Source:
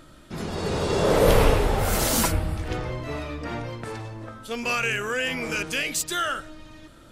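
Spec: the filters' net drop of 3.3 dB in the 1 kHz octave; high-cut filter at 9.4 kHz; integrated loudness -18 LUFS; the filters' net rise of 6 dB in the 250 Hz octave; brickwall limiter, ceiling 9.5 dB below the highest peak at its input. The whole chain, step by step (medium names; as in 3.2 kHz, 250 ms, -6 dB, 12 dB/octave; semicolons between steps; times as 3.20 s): low-pass 9.4 kHz; peaking EQ 250 Hz +8 dB; peaking EQ 1 kHz -5 dB; trim +8.5 dB; peak limiter -6.5 dBFS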